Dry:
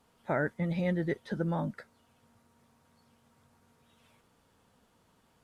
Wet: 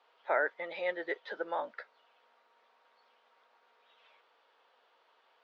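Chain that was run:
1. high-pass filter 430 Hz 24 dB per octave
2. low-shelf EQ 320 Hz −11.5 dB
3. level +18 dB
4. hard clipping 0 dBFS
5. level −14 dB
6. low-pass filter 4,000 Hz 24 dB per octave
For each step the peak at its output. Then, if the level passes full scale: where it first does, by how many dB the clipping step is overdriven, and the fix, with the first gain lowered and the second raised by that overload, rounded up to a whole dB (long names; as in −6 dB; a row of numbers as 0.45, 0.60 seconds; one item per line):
−19.0, −21.0, −3.0, −3.0, −17.0, −17.0 dBFS
no step passes full scale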